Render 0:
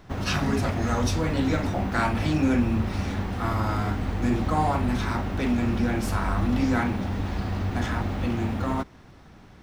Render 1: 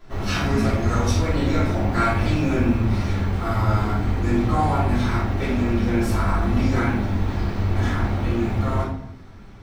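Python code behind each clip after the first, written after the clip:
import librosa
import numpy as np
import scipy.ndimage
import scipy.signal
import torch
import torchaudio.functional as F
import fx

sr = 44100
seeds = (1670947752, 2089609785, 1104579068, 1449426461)

y = fx.room_shoebox(x, sr, seeds[0], volume_m3=130.0, walls='mixed', distance_m=3.0)
y = y * librosa.db_to_amplitude(-8.0)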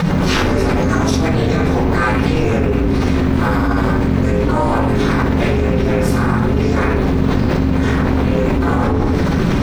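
y = x * np.sin(2.0 * np.pi * 170.0 * np.arange(len(x)) / sr)
y = fx.env_flatten(y, sr, amount_pct=100)
y = y * librosa.db_to_amplitude(4.0)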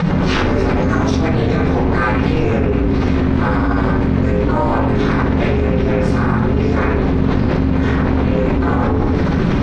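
y = fx.air_absorb(x, sr, metres=120.0)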